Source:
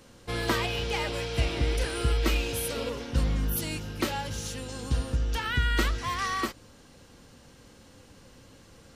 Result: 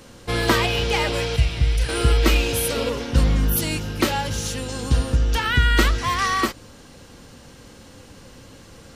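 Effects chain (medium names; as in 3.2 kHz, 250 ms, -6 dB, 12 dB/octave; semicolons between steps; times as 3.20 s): 1.36–1.89 s: FFT filter 140 Hz 0 dB, 310 Hz -15 dB, 2.7 kHz -5 dB; trim +8.5 dB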